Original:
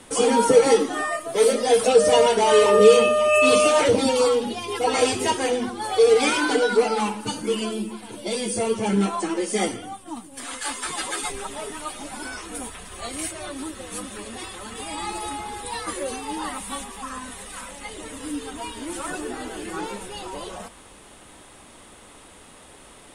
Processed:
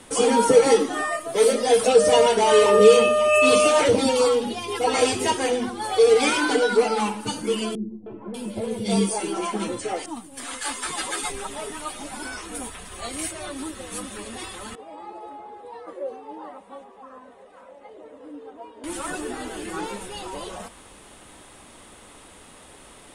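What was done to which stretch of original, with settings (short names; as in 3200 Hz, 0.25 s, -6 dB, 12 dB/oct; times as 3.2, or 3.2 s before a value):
7.75–10.06 three bands offset in time lows, mids, highs 0.31/0.59 s, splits 390/1600 Hz
14.75–18.84 band-pass 550 Hz, Q 2.2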